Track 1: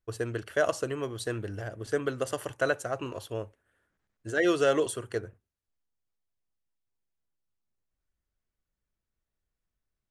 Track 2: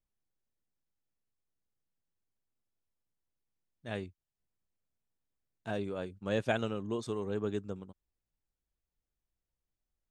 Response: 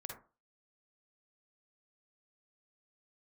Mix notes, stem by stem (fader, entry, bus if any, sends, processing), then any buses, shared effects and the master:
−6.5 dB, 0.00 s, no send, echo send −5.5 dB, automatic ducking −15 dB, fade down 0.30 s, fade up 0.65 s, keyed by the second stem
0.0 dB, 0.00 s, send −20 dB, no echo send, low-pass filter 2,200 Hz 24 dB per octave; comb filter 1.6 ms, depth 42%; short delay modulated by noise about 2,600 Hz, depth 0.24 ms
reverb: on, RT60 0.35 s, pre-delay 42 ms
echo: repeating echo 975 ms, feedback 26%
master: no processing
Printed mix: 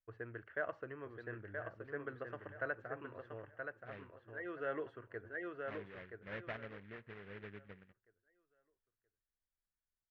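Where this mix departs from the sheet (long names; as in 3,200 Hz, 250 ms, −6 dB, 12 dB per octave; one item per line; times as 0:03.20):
stem 2 0.0 dB → −7.0 dB
master: extra transistor ladder low-pass 2,100 Hz, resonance 50%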